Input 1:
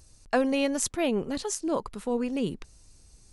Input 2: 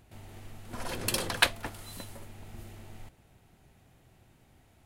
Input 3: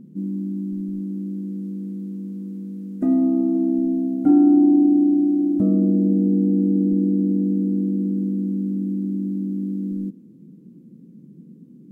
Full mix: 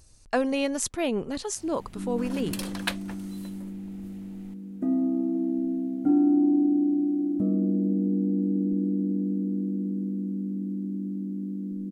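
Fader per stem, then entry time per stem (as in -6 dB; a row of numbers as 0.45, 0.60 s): -0.5, -6.0, -7.0 dB; 0.00, 1.45, 1.80 s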